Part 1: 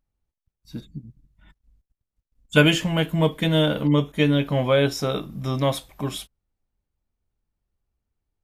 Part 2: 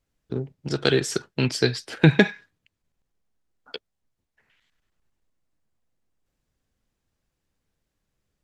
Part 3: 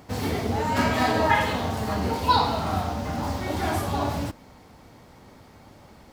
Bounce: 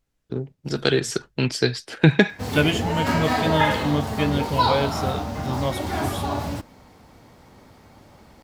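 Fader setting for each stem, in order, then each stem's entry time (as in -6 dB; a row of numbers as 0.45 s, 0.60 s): -4.0 dB, +0.5 dB, 0.0 dB; 0.00 s, 0.00 s, 2.30 s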